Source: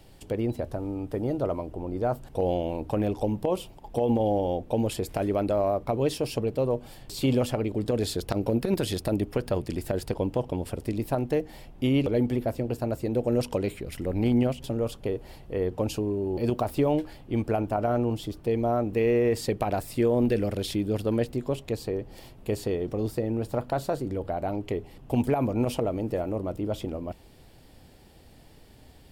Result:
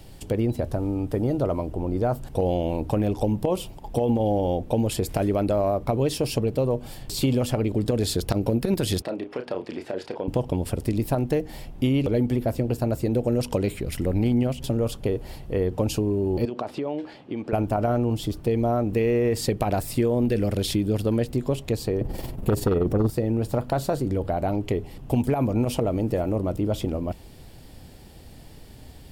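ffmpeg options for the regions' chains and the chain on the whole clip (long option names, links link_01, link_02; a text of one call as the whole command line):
ffmpeg -i in.wav -filter_complex "[0:a]asettb=1/sr,asplit=3[link_01][link_02][link_03];[link_01]atrim=end=9.024[link_04];[link_02]atrim=start=9.02:end=10.28,asetpts=PTS-STARTPTS,afade=type=in:duration=0.004:curve=qsin,afade=type=out:start_time=1.256:duration=0.004:curve=qsin,acompressor=threshold=-26dB:ratio=6:attack=3.2:release=140:knee=1:detection=peak,highpass=380,lowpass=3100,asplit=2[link_05][link_06];[link_06]adelay=32,volume=-8dB[link_07];[link_05][link_07]amix=inputs=2:normalize=0,atrim=end_sample=55566[link_08];[link_03]atrim=start=10.276[link_09];[link_04][link_08]acrossfade=duration=0.004:curve1=hsin:curve2=qsin[link_10];[link_10][link_09]acrossfade=duration=0.004:curve1=qsin:curve2=hsin,asettb=1/sr,asplit=3[link_11][link_12][link_13];[link_11]atrim=end=16.454[link_14];[link_12]atrim=start=16.45:end=17.53,asetpts=PTS-STARTPTS,afade=type=in:duration=0.004:curve=qsin,afade=type=out:start_time=1.076:duration=0.004:curve=qsin,acompressor=threshold=-28dB:ratio=12:attack=3.2:release=140:knee=1:detection=peak,highpass=250,lowpass=4100[link_15];[link_13]atrim=start=17.526[link_16];[link_14][link_15]acrossfade=duration=0.004:curve1=hsin:curve2=qsin[link_17];[link_17][link_16]acrossfade=duration=0.004:curve1=qsin:curve2=hsin,asettb=1/sr,asplit=3[link_18][link_19][link_20];[link_18]atrim=end=22.014[link_21];[link_19]atrim=start=22.01:end=23.1,asetpts=PTS-STARTPTS,afade=type=in:duration=0.004:curve=qsin,afade=type=out:start_time=1.086:duration=0.004:curve=qsin,equalizer=frequency=4300:width=0.36:gain=-9,tremolo=f=21:d=0.571,aeval=exprs='0.133*sin(PI/2*2.24*val(0)/0.133)':channel_layout=same[link_22];[link_20]atrim=start=23.096[link_23];[link_21][link_22]acrossfade=duration=0.004:curve1=hsin:curve2=qsin[link_24];[link_24][link_23]acrossfade=duration=0.004:curve1=qsin:curve2=hsin,bass=frequency=250:gain=4,treble=frequency=4000:gain=3,acompressor=threshold=-24dB:ratio=3,volume=4.5dB" out.wav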